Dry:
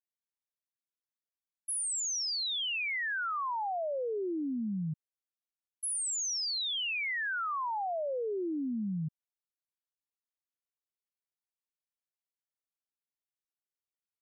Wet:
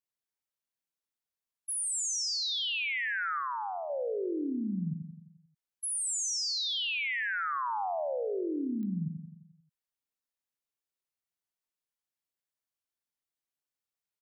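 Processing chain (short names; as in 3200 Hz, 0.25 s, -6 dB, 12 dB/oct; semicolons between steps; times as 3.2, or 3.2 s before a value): 3.39–3.9 bell 280 Hz -11.5 dB 2 oct; feedback echo 87 ms, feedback 57%, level -7 dB; spectral gate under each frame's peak -30 dB strong; pops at 1.72/8.83, -35 dBFS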